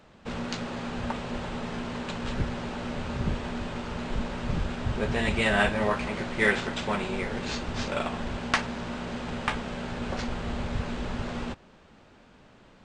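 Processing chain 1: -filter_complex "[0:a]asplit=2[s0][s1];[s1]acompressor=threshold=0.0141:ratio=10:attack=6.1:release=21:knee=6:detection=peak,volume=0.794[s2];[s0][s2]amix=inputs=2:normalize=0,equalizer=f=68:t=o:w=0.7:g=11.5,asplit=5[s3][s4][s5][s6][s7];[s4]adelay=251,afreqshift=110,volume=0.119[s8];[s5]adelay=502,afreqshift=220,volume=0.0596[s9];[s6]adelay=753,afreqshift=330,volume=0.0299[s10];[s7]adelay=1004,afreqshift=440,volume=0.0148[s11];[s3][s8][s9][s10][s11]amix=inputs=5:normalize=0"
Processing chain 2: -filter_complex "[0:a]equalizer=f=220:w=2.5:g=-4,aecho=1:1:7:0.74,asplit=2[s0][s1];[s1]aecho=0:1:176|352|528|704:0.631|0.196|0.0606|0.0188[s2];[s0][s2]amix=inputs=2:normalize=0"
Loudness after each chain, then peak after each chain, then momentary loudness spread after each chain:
-27.0 LUFS, -28.0 LUFS; -6.5 dBFS, -6.5 dBFS; 7 LU, 11 LU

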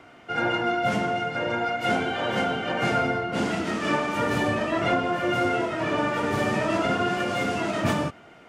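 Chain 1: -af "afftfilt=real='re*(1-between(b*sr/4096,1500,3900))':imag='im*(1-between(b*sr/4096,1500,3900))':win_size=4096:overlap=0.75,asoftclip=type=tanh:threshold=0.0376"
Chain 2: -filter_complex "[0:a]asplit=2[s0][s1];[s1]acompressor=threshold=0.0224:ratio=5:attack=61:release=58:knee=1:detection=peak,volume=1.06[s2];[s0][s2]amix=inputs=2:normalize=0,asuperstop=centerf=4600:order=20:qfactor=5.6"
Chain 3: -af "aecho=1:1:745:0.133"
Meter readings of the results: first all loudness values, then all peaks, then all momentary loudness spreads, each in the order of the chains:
-32.0 LUFS, -21.0 LUFS, -25.0 LUFS; -28.5 dBFS, -8.5 dBFS, -12.0 dBFS; 1 LU, 2 LU, 3 LU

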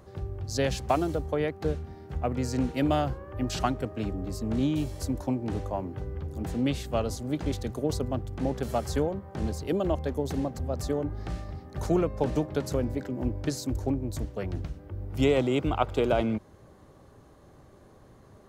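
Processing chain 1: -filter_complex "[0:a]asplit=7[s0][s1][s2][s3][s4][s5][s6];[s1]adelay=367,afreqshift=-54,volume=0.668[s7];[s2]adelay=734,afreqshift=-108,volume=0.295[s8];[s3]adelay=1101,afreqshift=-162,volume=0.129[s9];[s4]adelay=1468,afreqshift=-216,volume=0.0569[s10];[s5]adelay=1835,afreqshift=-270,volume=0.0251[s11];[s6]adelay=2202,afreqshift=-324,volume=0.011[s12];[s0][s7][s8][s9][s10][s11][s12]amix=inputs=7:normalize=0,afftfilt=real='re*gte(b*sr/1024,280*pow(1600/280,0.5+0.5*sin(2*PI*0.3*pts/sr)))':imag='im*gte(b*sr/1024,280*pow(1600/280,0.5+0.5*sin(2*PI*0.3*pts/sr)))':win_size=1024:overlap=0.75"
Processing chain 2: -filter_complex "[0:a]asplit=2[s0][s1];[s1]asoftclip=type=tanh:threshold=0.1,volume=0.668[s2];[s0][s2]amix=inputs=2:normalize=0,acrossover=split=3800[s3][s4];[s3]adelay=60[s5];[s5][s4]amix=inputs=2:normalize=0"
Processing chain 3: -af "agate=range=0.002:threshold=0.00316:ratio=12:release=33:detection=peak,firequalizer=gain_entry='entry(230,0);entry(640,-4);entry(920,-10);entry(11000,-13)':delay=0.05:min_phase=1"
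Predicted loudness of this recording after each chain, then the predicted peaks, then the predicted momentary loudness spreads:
-33.5 LUFS, -26.5 LUFS, -31.5 LUFS; -10.5 dBFS, -7.5 dBFS, -13.5 dBFS; 19 LU, 8 LU, 8 LU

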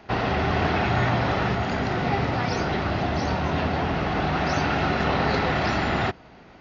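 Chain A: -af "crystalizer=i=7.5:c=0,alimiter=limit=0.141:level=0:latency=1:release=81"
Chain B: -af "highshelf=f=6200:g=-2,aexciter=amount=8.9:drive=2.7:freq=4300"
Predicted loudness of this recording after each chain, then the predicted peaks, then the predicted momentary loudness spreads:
-25.5 LUFS, -23.0 LUFS; -17.0 dBFS, -9.0 dBFS; 1 LU, 3 LU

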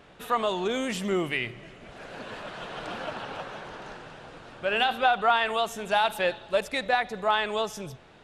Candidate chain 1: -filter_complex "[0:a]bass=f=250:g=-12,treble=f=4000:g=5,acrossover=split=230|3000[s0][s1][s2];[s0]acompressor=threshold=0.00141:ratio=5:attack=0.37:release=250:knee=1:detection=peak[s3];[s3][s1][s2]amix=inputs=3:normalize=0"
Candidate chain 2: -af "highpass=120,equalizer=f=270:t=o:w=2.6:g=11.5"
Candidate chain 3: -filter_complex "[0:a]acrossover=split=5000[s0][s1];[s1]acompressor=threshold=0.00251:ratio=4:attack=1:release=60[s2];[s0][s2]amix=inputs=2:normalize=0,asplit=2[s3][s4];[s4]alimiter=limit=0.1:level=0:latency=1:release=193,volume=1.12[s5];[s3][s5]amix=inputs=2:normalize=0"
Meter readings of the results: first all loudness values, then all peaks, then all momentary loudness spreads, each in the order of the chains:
-27.5 LUFS, -22.0 LUFS, -23.5 LUFS; -10.0 dBFS, -7.0 dBFS, -8.5 dBFS; 20 LU, 18 LU, 17 LU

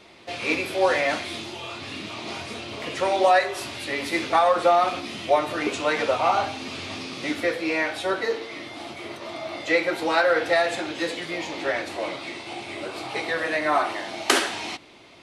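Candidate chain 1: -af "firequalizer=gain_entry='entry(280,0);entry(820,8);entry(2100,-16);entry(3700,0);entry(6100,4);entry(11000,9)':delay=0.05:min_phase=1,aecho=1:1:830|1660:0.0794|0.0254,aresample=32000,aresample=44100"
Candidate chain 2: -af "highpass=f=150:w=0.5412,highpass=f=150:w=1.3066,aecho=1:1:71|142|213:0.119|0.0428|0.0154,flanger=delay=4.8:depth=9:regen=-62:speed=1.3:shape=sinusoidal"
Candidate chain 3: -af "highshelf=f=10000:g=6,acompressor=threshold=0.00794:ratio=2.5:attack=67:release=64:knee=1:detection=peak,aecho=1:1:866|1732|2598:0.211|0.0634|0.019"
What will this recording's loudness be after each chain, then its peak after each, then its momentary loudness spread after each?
-20.5 LUFS, -29.0 LUFS, -34.0 LUFS; -1.0 dBFS, -8.5 dBFS, -11.0 dBFS; 17 LU, 14 LU, 5 LU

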